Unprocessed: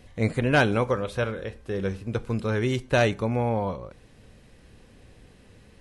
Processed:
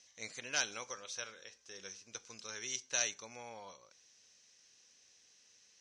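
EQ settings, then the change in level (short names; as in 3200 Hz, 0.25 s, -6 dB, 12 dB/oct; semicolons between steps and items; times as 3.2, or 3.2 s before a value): band-pass 6000 Hz, Q 9.4; air absorption 69 m; +17.0 dB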